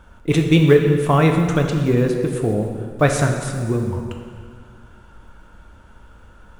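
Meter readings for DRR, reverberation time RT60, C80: 2.5 dB, 2.1 s, 6.0 dB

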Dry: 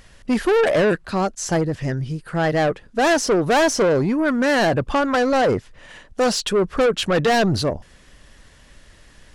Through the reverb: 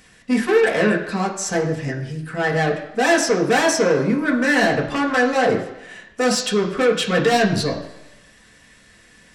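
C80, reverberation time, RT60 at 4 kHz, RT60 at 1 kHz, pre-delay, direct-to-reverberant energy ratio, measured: 11.0 dB, 0.95 s, 0.95 s, 1.0 s, 3 ms, −2.0 dB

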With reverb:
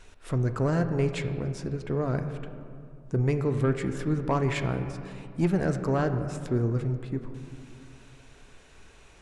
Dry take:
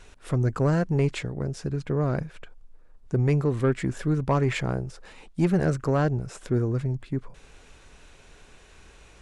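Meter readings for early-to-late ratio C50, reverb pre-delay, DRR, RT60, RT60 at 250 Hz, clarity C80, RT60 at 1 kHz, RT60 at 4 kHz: 9.0 dB, 3 ms, 7.0 dB, 2.3 s, 2.6 s, 10.0 dB, 2.2 s, 1.3 s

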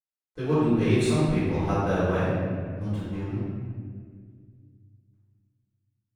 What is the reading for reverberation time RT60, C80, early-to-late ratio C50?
1.9 s, −0.5 dB, −3.5 dB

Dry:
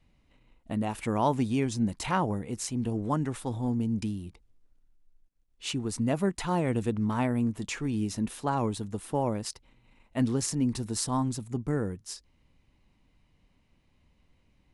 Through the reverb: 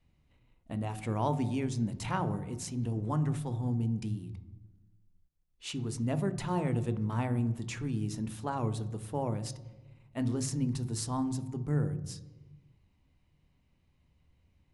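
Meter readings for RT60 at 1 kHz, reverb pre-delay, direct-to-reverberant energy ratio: 1.1 s, 7 ms, 11.0 dB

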